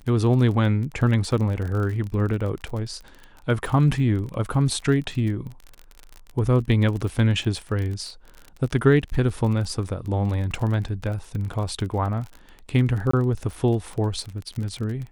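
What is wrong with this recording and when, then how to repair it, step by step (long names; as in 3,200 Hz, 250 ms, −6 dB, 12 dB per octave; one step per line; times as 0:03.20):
surface crackle 34 per second −30 dBFS
0:13.11–0:13.13: drop-out 24 ms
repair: click removal
repair the gap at 0:13.11, 24 ms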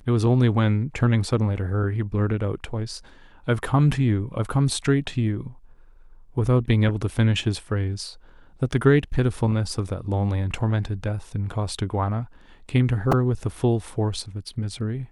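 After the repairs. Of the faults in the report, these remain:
none of them is left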